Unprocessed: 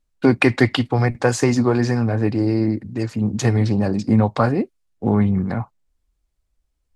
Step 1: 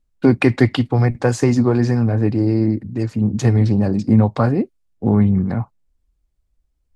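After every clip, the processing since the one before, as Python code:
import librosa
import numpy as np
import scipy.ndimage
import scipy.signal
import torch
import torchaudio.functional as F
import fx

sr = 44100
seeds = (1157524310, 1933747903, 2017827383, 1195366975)

y = fx.low_shelf(x, sr, hz=460.0, db=7.5)
y = F.gain(torch.from_numpy(y), -3.5).numpy()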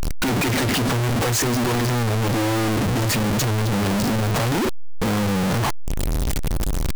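y = np.sign(x) * np.sqrt(np.mean(np.square(x)))
y = F.gain(torch.from_numpy(y), -3.0).numpy()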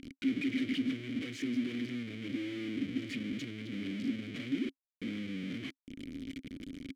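y = fx.vowel_filter(x, sr, vowel='i')
y = F.gain(torch.from_numpy(y), -4.0).numpy()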